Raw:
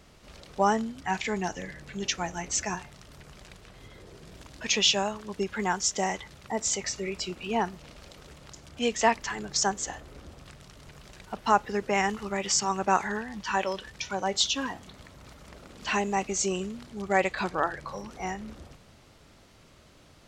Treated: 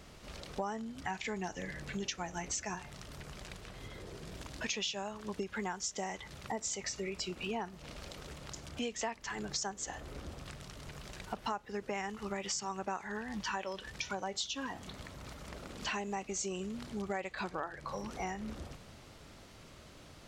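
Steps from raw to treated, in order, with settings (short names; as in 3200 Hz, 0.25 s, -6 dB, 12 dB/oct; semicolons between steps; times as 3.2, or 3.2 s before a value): compressor 6:1, threshold -37 dBFS, peak gain reduction 20 dB; gain +1.5 dB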